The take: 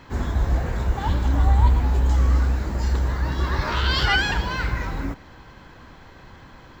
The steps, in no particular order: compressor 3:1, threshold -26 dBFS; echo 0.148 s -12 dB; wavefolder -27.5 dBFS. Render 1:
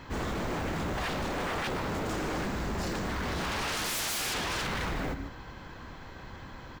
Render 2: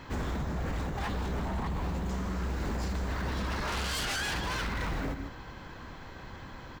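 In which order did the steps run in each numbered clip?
echo > wavefolder > compressor; echo > compressor > wavefolder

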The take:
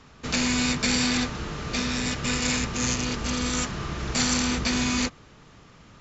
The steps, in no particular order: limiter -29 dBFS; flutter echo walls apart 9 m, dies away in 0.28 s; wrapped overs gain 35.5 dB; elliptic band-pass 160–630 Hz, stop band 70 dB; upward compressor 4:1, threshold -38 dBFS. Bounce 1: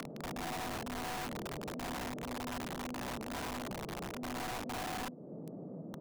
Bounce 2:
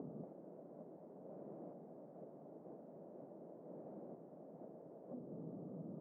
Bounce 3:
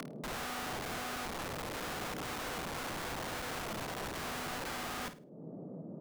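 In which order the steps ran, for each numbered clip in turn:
limiter > elliptic band-pass > upward compressor > flutter echo > wrapped overs; flutter echo > wrapped overs > upward compressor > elliptic band-pass > limiter; elliptic band-pass > upward compressor > limiter > wrapped overs > flutter echo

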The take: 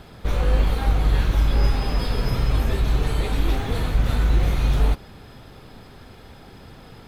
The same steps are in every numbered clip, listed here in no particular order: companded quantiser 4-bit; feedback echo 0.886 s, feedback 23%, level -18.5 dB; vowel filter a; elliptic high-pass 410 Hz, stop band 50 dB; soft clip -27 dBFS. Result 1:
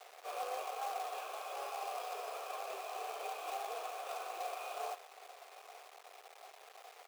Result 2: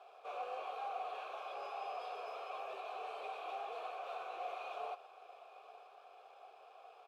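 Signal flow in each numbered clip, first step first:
vowel filter > companded quantiser > elliptic high-pass > soft clip > feedback echo; elliptic high-pass > soft clip > feedback echo > companded quantiser > vowel filter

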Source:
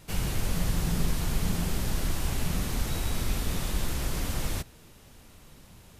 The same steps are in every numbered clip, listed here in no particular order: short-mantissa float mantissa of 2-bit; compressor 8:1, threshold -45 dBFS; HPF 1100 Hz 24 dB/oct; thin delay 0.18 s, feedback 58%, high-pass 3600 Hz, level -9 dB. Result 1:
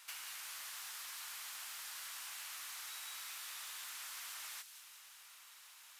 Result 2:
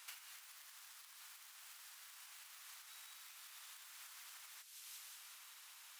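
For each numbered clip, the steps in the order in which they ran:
HPF > compressor > short-mantissa float > thin delay; thin delay > compressor > short-mantissa float > HPF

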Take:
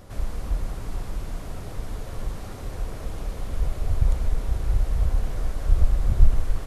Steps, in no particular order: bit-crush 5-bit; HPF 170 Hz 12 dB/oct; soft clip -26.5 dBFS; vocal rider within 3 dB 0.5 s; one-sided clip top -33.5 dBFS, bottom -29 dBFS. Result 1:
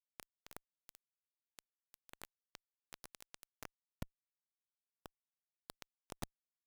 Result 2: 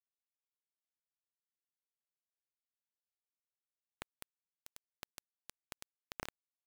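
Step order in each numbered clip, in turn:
vocal rider > HPF > soft clip > bit-crush > one-sided clip; soft clip > one-sided clip > HPF > vocal rider > bit-crush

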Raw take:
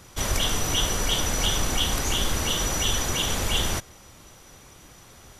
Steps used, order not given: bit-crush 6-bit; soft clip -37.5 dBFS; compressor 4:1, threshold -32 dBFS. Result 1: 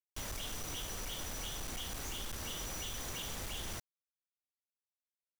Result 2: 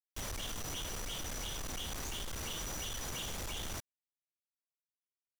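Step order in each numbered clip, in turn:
compressor > bit-crush > soft clip; bit-crush > compressor > soft clip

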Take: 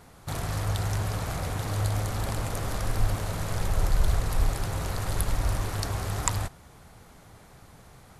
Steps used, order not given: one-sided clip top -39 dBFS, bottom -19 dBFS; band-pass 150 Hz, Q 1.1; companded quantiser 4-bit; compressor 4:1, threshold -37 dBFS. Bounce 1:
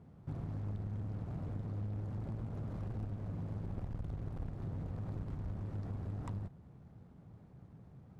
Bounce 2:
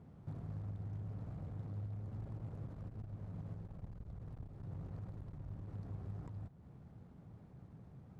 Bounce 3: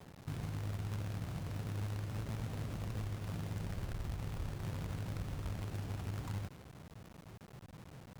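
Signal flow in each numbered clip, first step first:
companded quantiser > band-pass > one-sided clip > compressor; companded quantiser > compressor > one-sided clip > band-pass; band-pass > compressor > companded quantiser > one-sided clip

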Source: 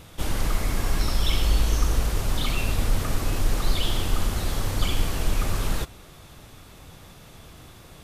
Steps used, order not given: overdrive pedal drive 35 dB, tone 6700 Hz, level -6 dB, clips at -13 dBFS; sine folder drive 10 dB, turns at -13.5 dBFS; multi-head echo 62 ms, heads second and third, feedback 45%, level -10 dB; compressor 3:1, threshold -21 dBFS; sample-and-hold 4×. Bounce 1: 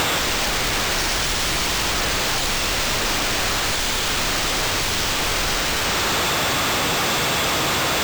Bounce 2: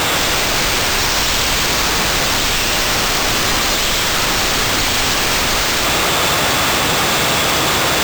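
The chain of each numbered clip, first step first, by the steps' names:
multi-head echo > overdrive pedal > sample-and-hold > sine folder > compressor; compressor > overdrive pedal > sine folder > multi-head echo > sample-and-hold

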